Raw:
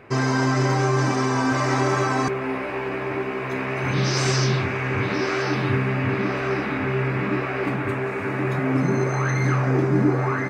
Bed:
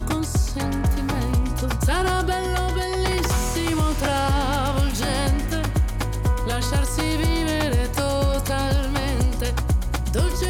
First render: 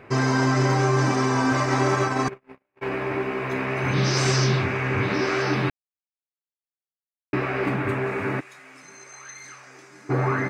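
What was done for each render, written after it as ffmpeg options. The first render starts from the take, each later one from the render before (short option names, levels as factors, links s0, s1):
-filter_complex "[0:a]asplit=3[s0][s1][s2];[s0]afade=t=out:st=1.62:d=0.02[s3];[s1]agate=range=0.00251:threshold=0.0708:ratio=16:release=100:detection=peak,afade=t=in:st=1.62:d=0.02,afade=t=out:st=2.81:d=0.02[s4];[s2]afade=t=in:st=2.81:d=0.02[s5];[s3][s4][s5]amix=inputs=3:normalize=0,asplit=3[s6][s7][s8];[s6]afade=t=out:st=8.39:d=0.02[s9];[s7]bandpass=f=7600:t=q:w=1.3,afade=t=in:st=8.39:d=0.02,afade=t=out:st=10.09:d=0.02[s10];[s8]afade=t=in:st=10.09:d=0.02[s11];[s9][s10][s11]amix=inputs=3:normalize=0,asplit=3[s12][s13][s14];[s12]atrim=end=5.7,asetpts=PTS-STARTPTS,afade=t=out:st=5.696:d=0.004:c=hsin[s15];[s13]atrim=start=5.7:end=7.33,asetpts=PTS-STARTPTS,volume=0[s16];[s14]atrim=start=7.33,asetpts=PTS-STARTPTS,afade=t=in:d=0.004:c=hsin[s17];[s15][s16][s17]concat=n=3:v=0:a=1"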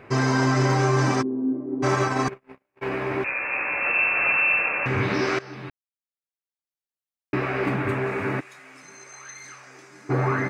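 -filter_complex "[0:a]asplit=3[s0][s1][s2];[s0]afade=t=out:st=1.21:d=0.02[s3];[s1]asuperpass=centerf=290:order=4:qfactor=1.8,afade=t=in:st=1.21:d=0.02,afade=t=out:st=1.82:d=0.02[s4];[s2]afade=t=in:st=1.82:d=0.02[s5];[s3][s4][s5]amix=inputs=3:normalize=0,asettb=1/sr,asplit=3[s6][s7][s8];[s6]atrim=end=3.244[s9];[s7]atrim=start=3.24:end=4.86,asetpts=PTS-STARTPTS,afade=t=in:d=0.004:c=qsin,afade=t=out:st=1.616:d=0.004:c=qsin,lowpass=f=2400:t=q:w=0.5098,lowpass=f=2400:t=q:w=0.6013,lowpass=f=2400:t=q:w=0.9,lowpass=f=2400:t=q:w=2.563,afreqshift=-2800[s10];[s8]atrim=start=4.856[s11];[s9][s10]acrossfade=d=0.004:c1=hsin:c2=qsin[s12];[s12][s11]acrossfade=d=0.004:c1=qsin:c2=hsin,asplit=2[s13][s14];[s13]atrim=end=5.39,asetpts=PTS-STARTPTS,afade=t=out:st=5.386:d=0.004:c=hsin:silence=0.112202[s15];[s14]atrim=start=5.39,asetpts=PTS-STARTPTS,afade=t=in:d=2.08:silence=0.112202[s16];[s15][s16]concat=n=2:v=0:a=1"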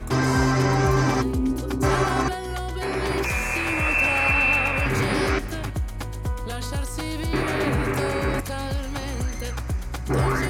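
-filter_complex "[1:a]volume=0.473[s0];[0:a][s0]amix=inputs=2:normalize=0"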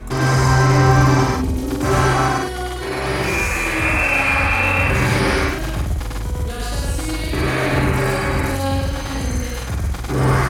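-filter_complex "[0:a]asplit=2[s0][s1];[s1]adelay=44,volume=0.75[s2];[s0][s2]amix=inputs=2:normalize=0,aecho=1:1:99.13|154.5:1|0.794"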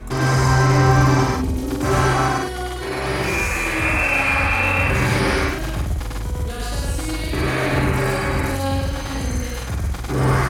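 -af "volume=0.841"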